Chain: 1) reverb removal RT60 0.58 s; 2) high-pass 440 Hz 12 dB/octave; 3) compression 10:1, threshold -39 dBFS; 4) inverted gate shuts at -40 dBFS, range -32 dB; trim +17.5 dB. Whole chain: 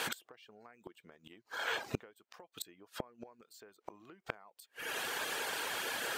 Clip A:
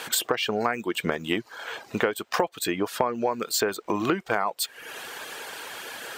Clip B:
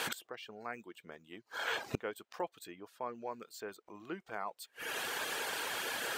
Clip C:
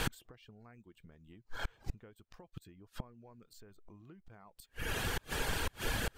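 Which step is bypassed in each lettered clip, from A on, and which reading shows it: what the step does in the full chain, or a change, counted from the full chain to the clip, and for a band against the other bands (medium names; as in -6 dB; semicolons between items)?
4, momentary loudness spread change -10 LU; 3, mean gain reduction 7.5 dB; 2, crest factor change -7.5 dB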